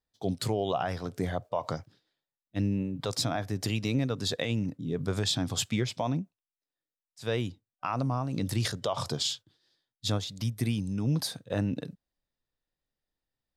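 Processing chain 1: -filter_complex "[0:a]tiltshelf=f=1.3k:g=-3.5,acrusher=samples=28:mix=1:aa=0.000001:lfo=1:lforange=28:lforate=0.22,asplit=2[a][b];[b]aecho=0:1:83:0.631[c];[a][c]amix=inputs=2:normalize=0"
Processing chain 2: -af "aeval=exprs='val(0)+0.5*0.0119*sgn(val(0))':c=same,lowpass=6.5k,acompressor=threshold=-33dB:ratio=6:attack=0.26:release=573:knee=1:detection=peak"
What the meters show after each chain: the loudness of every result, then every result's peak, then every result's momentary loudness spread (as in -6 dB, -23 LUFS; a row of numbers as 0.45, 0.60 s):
-32.0, -41.5 LUFS; -13.5, -28.5 dBFS; 8, 10 LU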